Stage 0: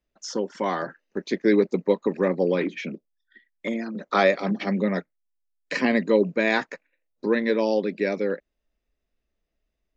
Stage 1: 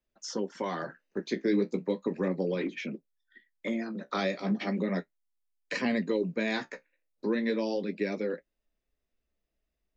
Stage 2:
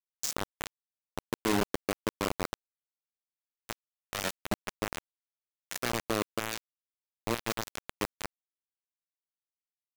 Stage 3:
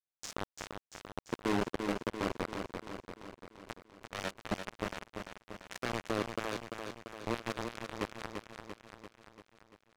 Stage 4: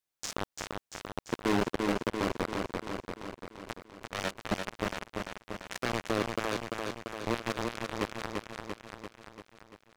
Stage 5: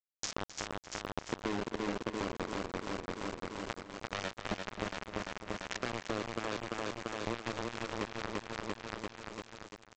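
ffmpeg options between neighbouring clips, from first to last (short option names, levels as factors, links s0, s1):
-filter_complex "[0:a]flanger=delay=7.7:depth=9.2:regen=-43:speed=0.36:shape=triangular,acrossover=split=310|3000[s0][s1][s2];[s1]acompressor=threshold=0.0282:ratio=6[s3];[s0][s3][s2]amix=inputs=3:normalize=0"
-filter_complex "[0:a]aexciter=amount=14.7:drive=5.5:freq=6700,asplit=2[s0][s1];[s1]aeval=exprs='0.0224*(abs(mod(val(0)/0.0224+3,4)-2)-1)':c=same,volume=0.708[s2];[s0][s2]amix=inputs=2:normalize=0,acrusher=bits=3:mix=0:aa=0.000001,volume=0.75"
-filter_complex "[0:a]aemphasis=mode=reproduction:type=50fm,asplit=2[s0][s1];[s1]aecho=0:1:342|684|1026|1368|1710|2052|2394|2736:0.501|0.296|0.174|0.103|0.0607|0.0358|0.0211|0.0125[s2];[s0][s2]amix=inputs=2:normalize=0,volume=0.668"
-filter_complex "[0:a]asplit=2[s0][s1];[s1]alimiter=level_in=2.24:limit=0.0631:level=0:latency=1:release=22,volume=0.447,volume=0.708[s2];[s0][s2]amix=inputs=2:normalize=0,asoftclip=type=hard:threshold=0.0841,volume=1.33"
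-filter_complex "[0:a]acompressor=threshold=0.0126:ratio=4,aresample=16000,acrusher=bits=7:mix=0:aa=0.000001,aresample=44100,asplit=2[s0][s1];[s1]adelay=262.4,volume=0.282,highshelf=f=4000:g=-5.9[s2];[s0][s2]amix=inputs=2:normalize=0,volume=1.68"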